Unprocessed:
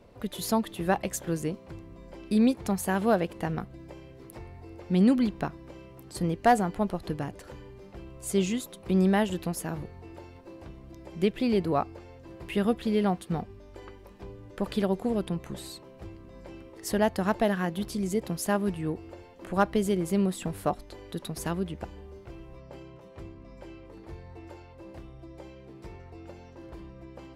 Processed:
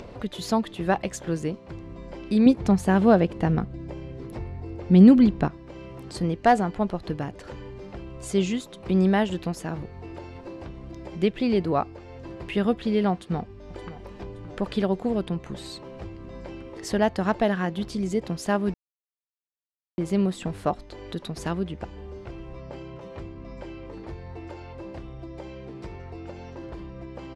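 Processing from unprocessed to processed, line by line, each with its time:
2.46–5.48 s: bass shelf 430 Hz +8 dB
13.13–14.25 s: echo throw 570 ms, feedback 45%, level -17 dB
18.74–19.98 s: mute
whole clip: low-pass 6.2 kHz 12 dB/octave; upward compressor, threshold -34 dBFS; trim +2.5 dB

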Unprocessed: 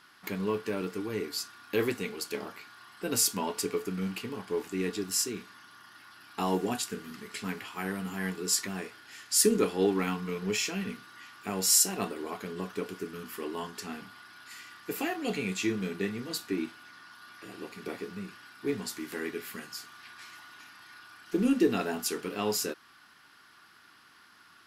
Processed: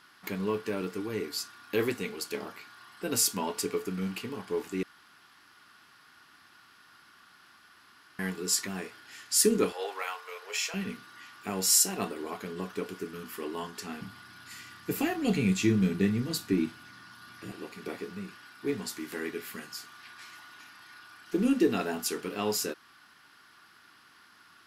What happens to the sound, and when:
4.83–8.19 s: room tone
9.72–10.74 s: elliptic high-pass 520 Hz, stop band 80 dB
14.01–17.52 s: tone controls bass +13 dB, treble +2 dB

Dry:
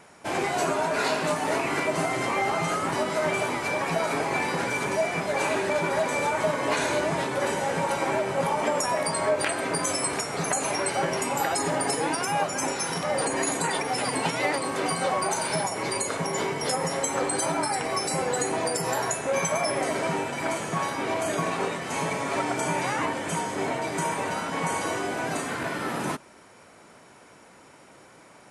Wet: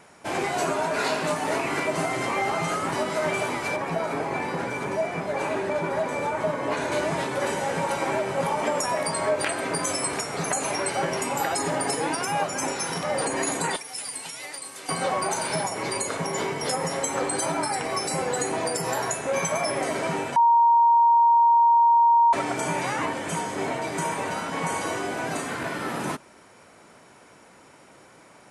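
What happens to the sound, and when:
3.76–6.92 s: treble shelf 2.1 kHz -9 dB
13.76–14.89 s: pre-emphasis filter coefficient 0.9
20.36–22.33 s: bleep 935 Hz -14 dBFS

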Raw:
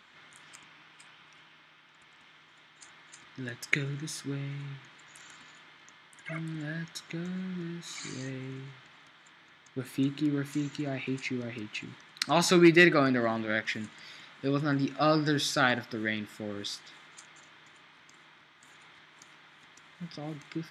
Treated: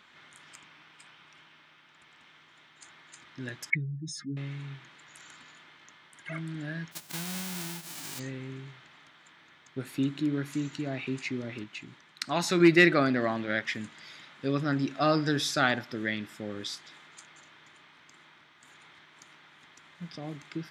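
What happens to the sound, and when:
3.70–4.37 s: spectral contrast enhancement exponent 2.8
6.91–8.18 s: formants flattened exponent 0.1
11.64–12.60 s: gain -4 dB

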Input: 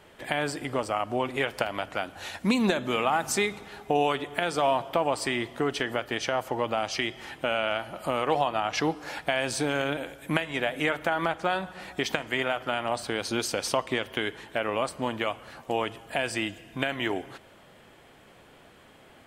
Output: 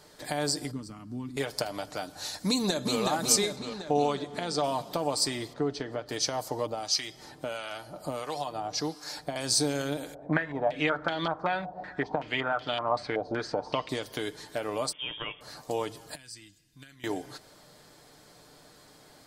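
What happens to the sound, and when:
0.71–1.37 s: FFT filter 150 Hz 0 dB, 220 Hz +6 dB, 660 Hz -28 dB, 950 Hz -19 dB, 1.4 kHz -15 dB
2.48–2.99 s: echo throw 370 ms, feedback 60%, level -3.5 dB
3.56–4.64 s: distance through air 69 m
5.53–6.09 s: tape spacing loss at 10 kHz 23 dB
6.66–9.36 s: harmonic tremolo 1.5 Hz, crossover 960 Hz
10.14–13.89 s: step-sequenced low-pass 5.3 Hz 700–3400 Hz
14.92–15.41 s: frequency inversion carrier 3.4 kHz
16.15–17.04 s: amplifier tone stack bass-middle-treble 6-0-2
whole clip: resonant high shelf 3.6 kHz +7.5 dB, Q 3; comb 6.7 ms, depth 43%; dynamic bell 1.6 kHz, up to -5 dB, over -40 dBFS, Q 0.8; trim -2.5 dB

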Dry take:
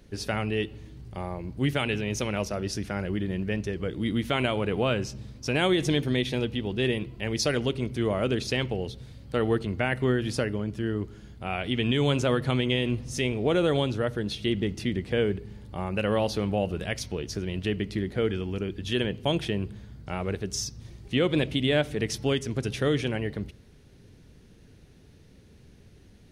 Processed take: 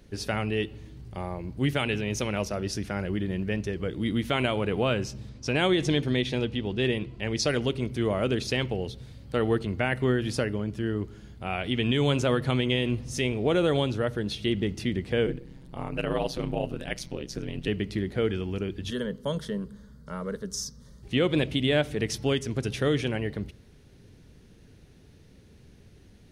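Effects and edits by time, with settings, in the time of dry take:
5.29–7.48 s: low-pass 8.4 kHz
15.26–17.68 s: ring modulator 65 Hz
18.90–21.03 s: static phaser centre 500 Hz, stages 8

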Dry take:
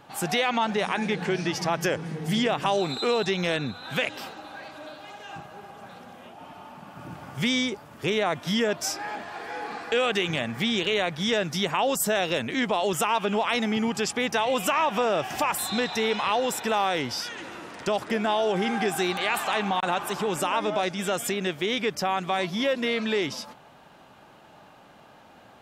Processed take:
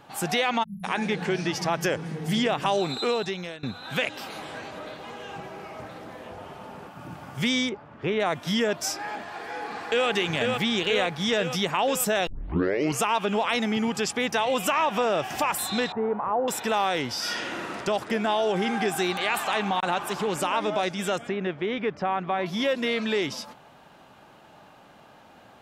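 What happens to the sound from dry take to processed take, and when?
0.63–0.84 s: spectral selection erased 210–10000 Hz
3.02–3.63 s: fade out, to -21 dB
4.16–6.88 s: ever faster or slower copies 123 ms, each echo -4 st, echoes 3
7.69–8.20 s: low-pass 2.3 kHz
9.26–10.08 s: echo throw 490 ms, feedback 70%, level -3.5 dB
12.27 s: tape start 0.77 s
15.92–16.48 s: low-pass 1.2 kHz 24 dB/octave
17.18–17.74 s: reverb throw, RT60 1.1 s, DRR -5 dB
19.76–20.64 s: loudspeaker Doppler distortion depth 0.13 ms
21.18–22.46 s: low-pass 2 kHz

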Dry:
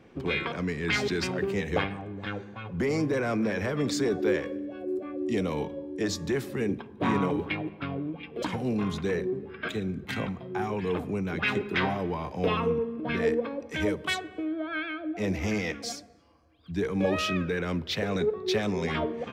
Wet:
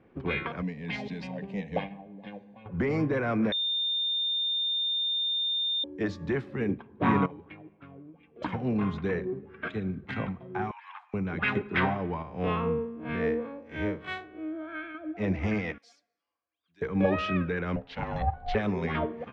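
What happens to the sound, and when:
0.62–2.66 s: static phaser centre 360 Hz, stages 6
3.52–5.84 s: bleep 3.62 kHz -18 dBFS
7.26–8.42 s: gain -10.5 dB
10.71–11.14 s: steep high-pass 830 Hz 72 dB/octave
12.22–14.95 s: spectral blur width 90 ms
15.78–16.82 s: differentiator
17.76–18.55 s: ring modulator 350 Hz
whole clip: low-pass 2.2 kHz 12 dB/octave; dynamic bell 400 Hz, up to -4 dB, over -40 dBFS, Q 0.97; upward expansion 1.5:1, over -44 dBFS; trim +4.5 dB

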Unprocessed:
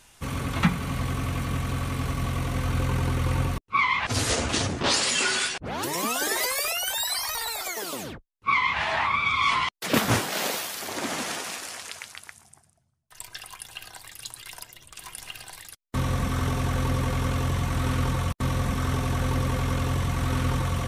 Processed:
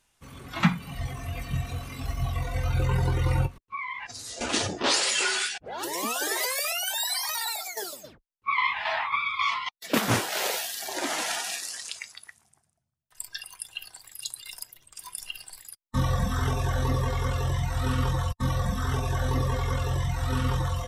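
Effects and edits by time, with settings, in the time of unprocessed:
3.46–4.41 s: compression 4:1, threshold -34 dBFS
7.50–10.03 s: tremolo saw down 3.7 Hz, depth 60%
whole clip: spectral noise reduction 14 dB; peaking EQ 90 Hz -2 dB 0.59 oct; gain riding within 4 dB 2 s

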